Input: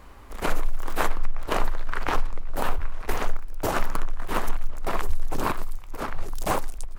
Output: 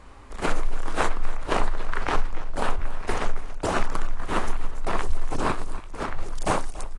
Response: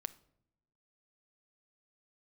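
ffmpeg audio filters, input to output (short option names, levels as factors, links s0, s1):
-af "aecho=1:1:283:0.158" -ar 22050 -c:a aac -b:a 32k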